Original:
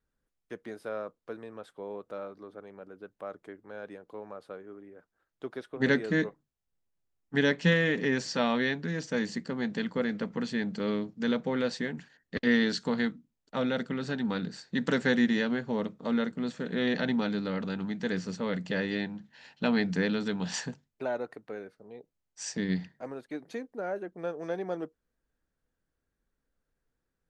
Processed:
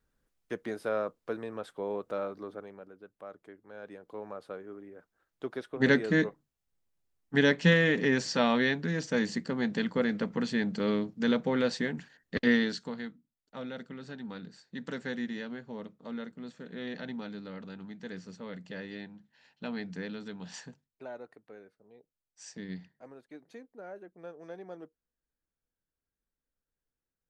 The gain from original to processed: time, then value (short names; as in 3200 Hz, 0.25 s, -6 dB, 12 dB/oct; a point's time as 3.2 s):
2.5 s +5 dB
2.99 s -5.5 dB
3.65 s -5.5 dB
4.23 s +1.5 dB
12.45 s +1.5 dB
12.99 s -10.5 dB